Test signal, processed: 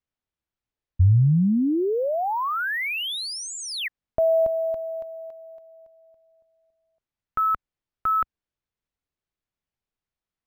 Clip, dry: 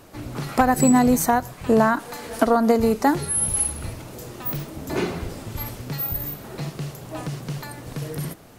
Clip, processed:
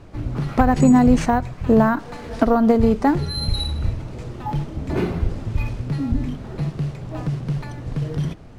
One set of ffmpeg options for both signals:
-af "acrusher=samples=3:mix=1:aa=0.000001,aemphasis=mode=reproduction:type=bsi,volume=-1dB"

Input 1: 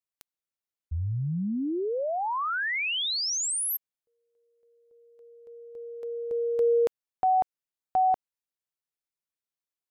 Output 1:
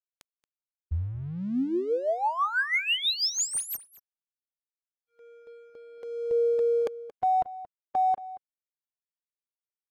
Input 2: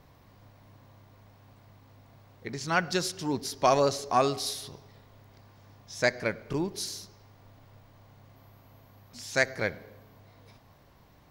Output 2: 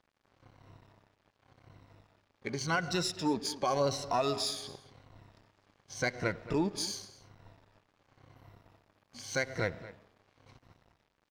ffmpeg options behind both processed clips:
-filter_complex "[0:a]afftfilt=real='re*pow(10,13/40*sin(2*PI*(2*log(max(b,1)*sr/1024/100)/log(2)-(-0.9)*(pts-256)/sr)))':imag='im*pow(10,13/40*sin(2*PI*(2*log(max(b,1)*sr/1024/100)/log(2)-(-0.9)*(pts-256)/sr)))':win_size=1024:overlap=0.75,alimiter=limit=-19.5dB:level=0:latency=1:release=138,aeval=exprs='sgn(val(0))*max(abs(val(0))-0.00211,0)':c=same,adynamicsmooth=sensitivity=6.5:basefreq=7.4k,asplit=2[a][b];[b]adelay=227.4,volume=-16dB,highshelf=f=4k:g=-5.12[c];[a][c]amix=inputs=2:normalize=0"

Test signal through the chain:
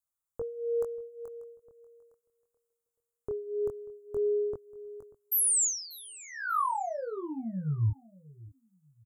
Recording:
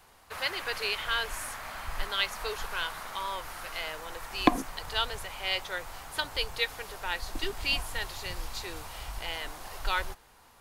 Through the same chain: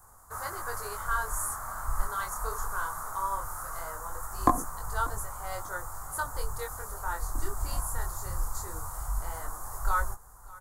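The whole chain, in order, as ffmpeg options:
-filter_complex "[0:a]firequalizer=gain_entry='entry(110,0);entry(180,-7);entry(280,-7);entry(1200,10);entry(2600,-24);entry(7100,12)':delay=0.05:min_phase=1,flanger=delay=19.5:depth=7.5:speed=0.19,lowshelf=f=360:g=12,asplit=2[a][b];[b]aecho=0:1:589|1178:0.0841|0.0236[c];[a][c]amix=inputs=2:normalize=0,volume=-1.5dB"

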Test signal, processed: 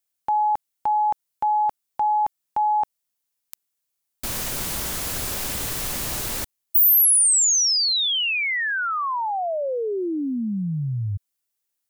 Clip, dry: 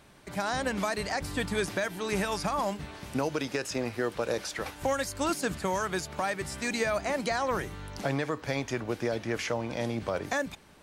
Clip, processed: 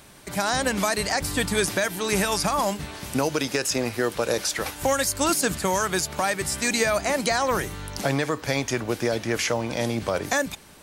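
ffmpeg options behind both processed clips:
-af "highshelf=f=5.4k:g=11,volume=5.5dB"

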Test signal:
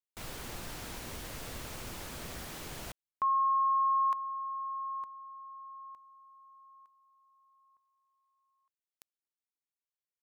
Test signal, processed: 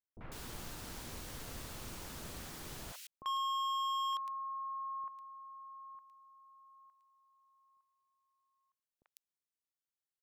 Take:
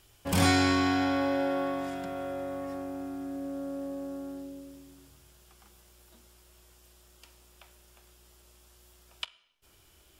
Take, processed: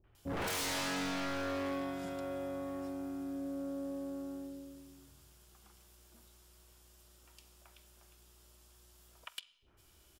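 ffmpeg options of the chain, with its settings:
-filter_complex "[0:a]acrossover=split=590|2200[a][b][c];[b]adelay=40[d];[c]adelay=150[e];[a][d][e]amix=inputs=3:normalize=0,aeval=exprs='0.0376*(abs(mod(val(0)/0.0376+3,4)-2)-1)':c=same,volume=-3dB"

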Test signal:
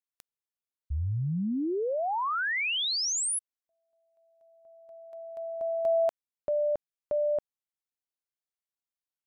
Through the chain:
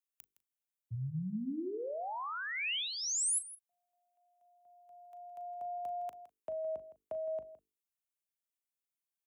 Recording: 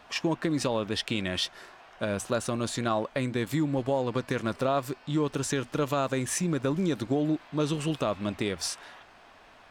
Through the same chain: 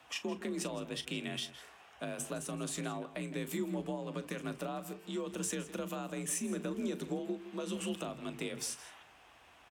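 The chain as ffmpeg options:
-filter_complex "[0:a]bandreject=f=50:t=h:w=6,bandreject=f=100:t=h:w=6,bandreject=f=150:t=h:w=6,bandreject=f=200:t=h:w=6,bandreject=f=250:t=h:w=6,bandreject=f=300:t=h:w=6,bandreject=f=350:t=h:w=6,bandreject=f=400:t=h:w=6,acrossover=split=270[a][b];[b]acompressor=threshold=-30dB:ratio=6:attack=8.2:release=620:knee=2.83:detection=peak[c];[a][c]amix=inputs=2:normalize=0,afreqshift=45,aexciter=amount=1.7:drive=3:freq=2.4k,asplit=2[d][e];[e]adelay=38,volume=-13.5dB[f];[d][f]amix=inputs=2:normalize=0,asplit=2[g][h];[h]adelay=163.3,volume=-14dB,highshelf=f=4k:g=-3.67[i];[g][i]amix=inputs=2:normalize=0,volume=-7.5dB"

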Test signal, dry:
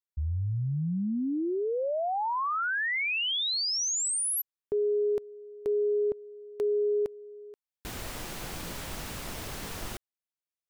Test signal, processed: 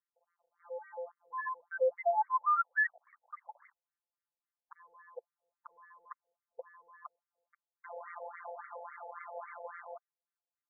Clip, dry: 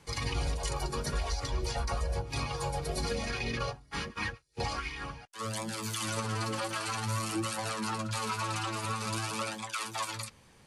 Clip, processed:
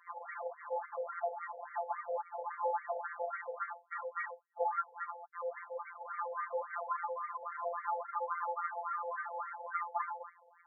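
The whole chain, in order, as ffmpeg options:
-af "afftfilt=real='hypot(re,im)*cos(PI*b)':imag='0':win_size=1024:overlap=0.75,adynamicequalizer=threshold=0.00282:dfrequency=360:dqfactor=1.1:tfrequency=360:tqfactor=1.1:attack=5:release=100:ratio=0.4:range=3.5:mode=boostabove:tftype=bell,aresample=11025,volume=32.5dB,asoftclip=hard,volume=-32.5dB,aresample=44100,afftfilt=real='re*between(b*sr/1024,620*pow(1600/620,0.5+0.5*sin(2*PI*3.6*pts/sr))/1.41,620*pow(1600/620,0.5+0.5*sin(2*PI*3.6*pts/sr))*1.41)':imag='im*between(b*sr/1024,620*pow(1600/620,0.5+0.5*sin(2*PI*3.6*pts/sr))/1.41,620*pow(1600/620,0.5+0.5*sin(2*PI*3.6*pts/sr))*1.41)':win_size=1024:overlap=0.75,volume=8.5dB"

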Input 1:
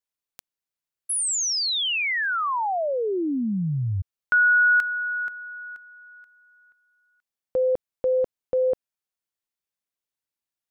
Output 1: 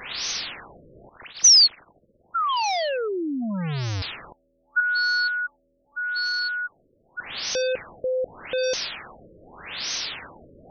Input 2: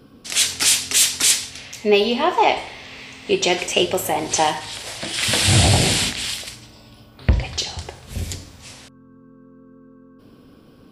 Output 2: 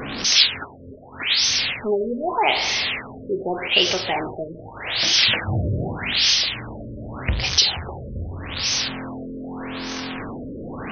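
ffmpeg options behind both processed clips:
-af "aeval=exprs='val(0)+0.5*0.126*sgn(val(0))':c=same,crystalizer=i=7:c=0,afftfilt=real='re*lt(b*sr/1024,590*pow(6500/590,0.5+0.5*sin(2*PI*0.83*pts/sr)))':imag='im*lt(b*sr/1024,590*pow(6500/590,0.5+0.5*sin(2*PI*0.83*pts/sr)))':win_size=1024:overlap=0.75,volume=-8.5dB"

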